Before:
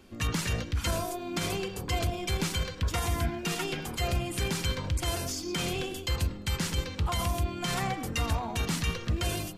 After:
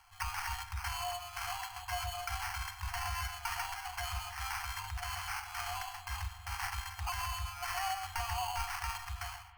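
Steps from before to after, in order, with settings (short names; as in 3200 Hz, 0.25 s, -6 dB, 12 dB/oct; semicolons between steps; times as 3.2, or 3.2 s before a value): ending faded out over 0.51 s; LPF 9400 Hz 24 dB/oct; resonant low shelf 380 Hz -9 dB, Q 3; limiter -24 dBFS, peak gain reduction 5.5 dB; sample-rate reducer 3700 Hz, jitter 0%; FFT band-reject 100–710 Hz; spring tank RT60 3.4 s, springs 43 ms, chirp 80 ms, DRR 14.5 dB; gain -1.5 dB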